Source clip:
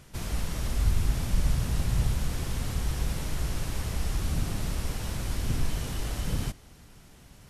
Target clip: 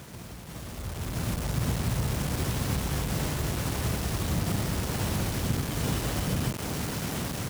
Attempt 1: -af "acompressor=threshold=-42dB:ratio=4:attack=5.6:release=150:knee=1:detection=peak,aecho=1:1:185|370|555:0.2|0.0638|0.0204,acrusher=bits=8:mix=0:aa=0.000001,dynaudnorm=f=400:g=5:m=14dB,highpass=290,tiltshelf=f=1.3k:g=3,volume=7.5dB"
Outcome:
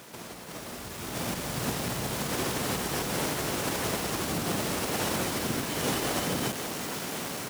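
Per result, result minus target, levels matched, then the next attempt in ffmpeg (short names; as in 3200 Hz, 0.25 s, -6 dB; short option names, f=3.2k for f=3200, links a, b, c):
125 Hz band -8.0 dB; compressor: peak gain reduction -5.5 dB
-af "acompressor=threshold=-42dB:ratio=4:attack=5.6:release=150:knee=1:detection=peak,aecho=1:1:185|370|555:0.2|0.0638|0.0204,acrusher=bits=8:mix=0:aa=0.000001,dynaudnorm=f=400:g=5:m=14dB,highpass=93,tiltshelf=f=1.3k:g=3,volume=7.5dB"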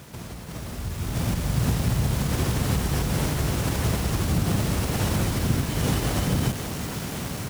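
compressor: peak gain reduction -5.5 dB
-af "acompressor=threshold=-49dB:ratio=4:attack=5.6:release=150:knee=1:detection=peak,aecho=1:1:185|370|555:0.2|0.0638|0.0204,acrusher=bits=8:mix=0:aa=0.000001,dynaudnorm=f=400:g=5:m=14dB,highpass=93,tiltshelf=f=1.3k:g=3,volume=7.5dB"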